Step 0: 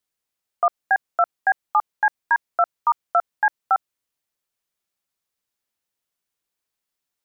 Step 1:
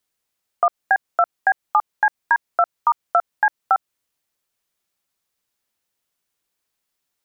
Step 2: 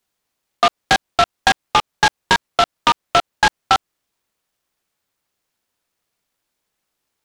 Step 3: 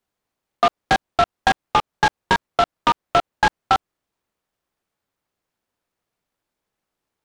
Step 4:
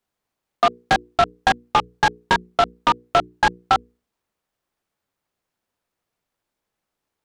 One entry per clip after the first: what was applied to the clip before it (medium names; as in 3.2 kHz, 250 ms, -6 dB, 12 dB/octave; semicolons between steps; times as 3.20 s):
compression 2:1, threshold -21 dBFS, peak gain reduction 4.5 dB; trim +5 dB
delay time shaken by noise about 1.9 kHz, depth 0.083 ms; trim +3 dB
treble shelf 2 kHz -9.5 dB
hum notches 60/120/180/240/300/360/420/480 Hz